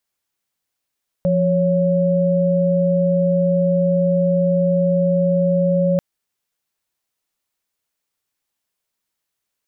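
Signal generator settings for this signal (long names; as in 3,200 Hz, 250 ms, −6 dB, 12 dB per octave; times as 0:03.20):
held notes F3/C#5 sine, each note −16.5 dBFS 4.74 s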